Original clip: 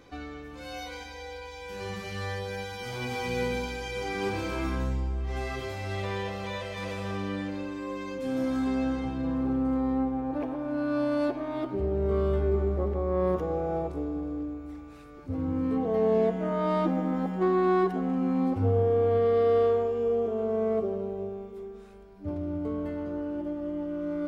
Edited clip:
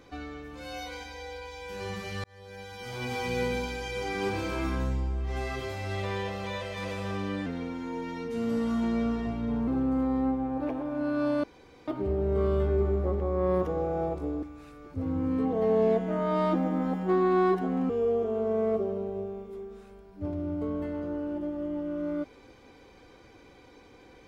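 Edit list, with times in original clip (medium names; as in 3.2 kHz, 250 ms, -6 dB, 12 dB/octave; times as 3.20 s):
2.24–3.12 s: fade in
7.46–9.41 s: speed 88%
11.17–11.61 s: room tone
14.16–14.75 s: delete
18.22–19.93 s: delete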